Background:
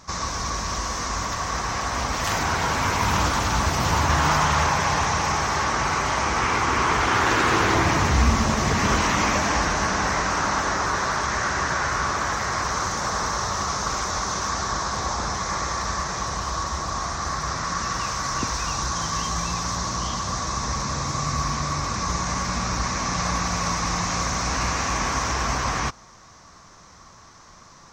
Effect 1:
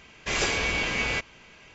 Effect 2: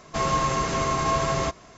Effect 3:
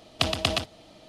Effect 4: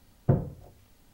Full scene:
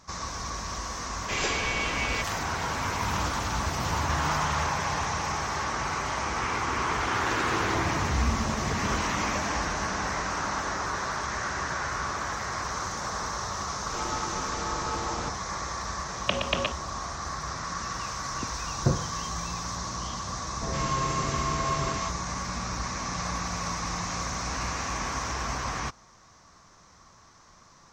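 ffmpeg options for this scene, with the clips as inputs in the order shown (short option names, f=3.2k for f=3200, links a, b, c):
-filter_complex "[2:a]asplit=2[a][b];[0:a]volume=-7dB[c];[a]aeval=exprs='val(0)*sin(2*PI*200*n/s)':c=same[d];[3:a]highpass=f=200:t=q:w=0.5412,highpass=f=200:t=q:w=1.307,lowpass=f=3.4k:t=q:w=0.5176,lowpass=f=3.4k:t=q:w=0.7071,lowpass=f=3.4k:t=q:w=1.932,afreqshift=-85[e];[b]acrossover=split=710[f][g];[g]adelay=120[h];[f][h]amix=inputs=2:normalize=0[i];[1:a]atrim=end=1.74,asetpts=PTS-STARTPTS,volume=-3dB,afade=t=in:d=0.004:c=hsin,afade=t=out:st=1.736:d=0.004:c=hsin,adelay=1020[j];[d]atrim=end=1.77,asetpts=PTS-STARTPTS,volume=-7.5dB,afade=t=in:d=0.004:c=hsin,afade=t=out:st=1.766:d=0.004:c=hsin,adelay=13790[k];[e]atrim=end=1.08,asetpts=PTS-STARTPTS,volume=-0.5dB,afade=t=in:d=0.004:c=hsin,afade=t=out:st=1.076:d=0.004:c=hsin,adelay=16080[l];[4:a]atrim=end=1.13,asetpts=PTS-STARTPTS,volume=-1dB,afade=t=in:d=0.004:c=hsin,afade=t=out:st=1.126:d=0.004:c=hsin,adelay=18570[m];[i]atrim=end=1.77,asetpts=PTS-STARTPTS,volume=-5dB,afade=t=in:d=0.004:c=hsin,afade=t=out:st=1.766:d=0.004:c=hsin,adelay=20470[n];[c][j][k][l][m][n]amix=inputs=6:normalize=0"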